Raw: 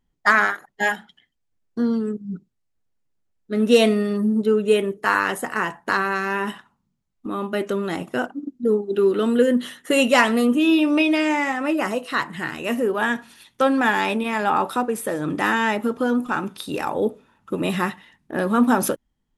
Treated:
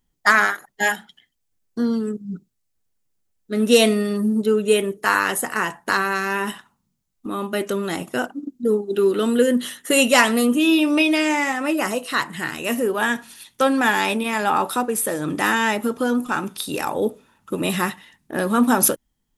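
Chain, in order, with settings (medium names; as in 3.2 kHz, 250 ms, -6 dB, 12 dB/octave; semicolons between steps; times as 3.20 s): treble shelf 4.8 kHz +12 dB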